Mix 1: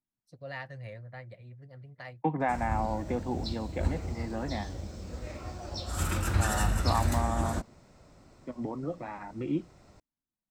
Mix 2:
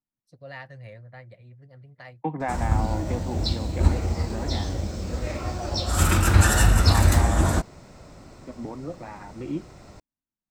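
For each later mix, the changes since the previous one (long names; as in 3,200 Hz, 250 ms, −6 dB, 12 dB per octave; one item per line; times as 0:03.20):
background +10.5 dB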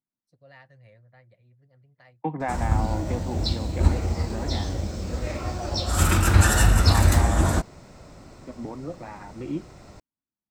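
first voice −10.5 dB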